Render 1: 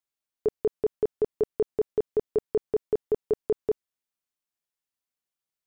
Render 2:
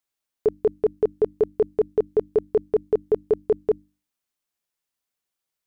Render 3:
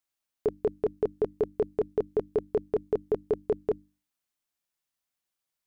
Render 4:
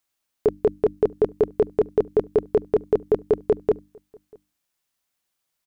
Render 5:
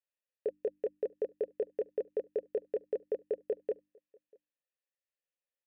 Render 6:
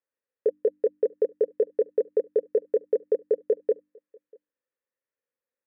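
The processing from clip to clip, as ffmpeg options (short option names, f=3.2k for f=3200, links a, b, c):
-af "bandreject=f=50:t=h:w=6,bandreject=f=100:t=h:w=6,bandreject=f=150:t=h:w=6,bandreject=f=200:t=h:w=6,bandreject=f=250:t=h:w=6,bandreject=f=300:t=h:w=6,volume=5dB"
-af "equalizer=f=440:w=4.8:g=-5.5,volume=-2dB"
-filter_complex "[0:a]asplit=2[a][b];[b]adelay=641.4,volume=-28dB,highshelf=f=4k:g=-14.4[c];[a][c]amix=inputs=2:normalize=0,volume=7.5dB"
-filter_complex "[0:a]asplit=3[a][b][c];[a]bandpass=f=530:t=q:w=8,volume=0dB[d];[b]bandpass=f=1.84k:t=q:w=8,volume=-6dB[e];[c]bandpass=f=2.48k:t=q:w=8,volume=-9dB[f];[d][e][f]amix=inputs=3:normalize=0,volume=-4.5dB"
-af "highpass=140,equalizer=f=170:t=q:w=4:g=-7,equalizer=f=260:t=q:w=4:g=4,equalizer=f=470:t=q:w=4:g=8,equalizer=f=730:t=q:w=4:g=-8,lowpass=f=2k:w=0.5412,lowpass=f=2k:w=1.3066,volume=5.5dB"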